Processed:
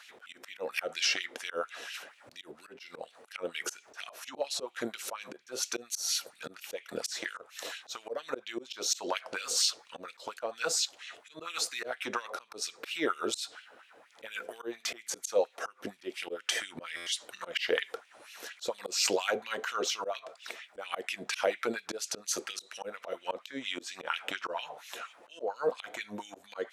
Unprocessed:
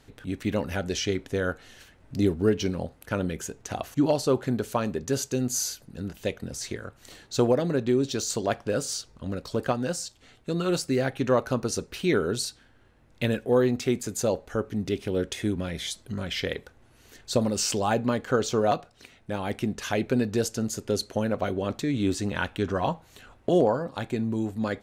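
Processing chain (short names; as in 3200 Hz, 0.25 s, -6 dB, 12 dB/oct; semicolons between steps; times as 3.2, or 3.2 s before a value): compressor 6:1, threshold -30 dBFS, peak gain reduction 12.5 dB; notch 430 Hz, Q 12; LFO high-pass sine 4.6 Hz 480–3000 Hz; auto swell 0.184 s; wide varispeed 0.929×; stuck buffer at 16.96, samples 512, times 8; gain +6.5 dB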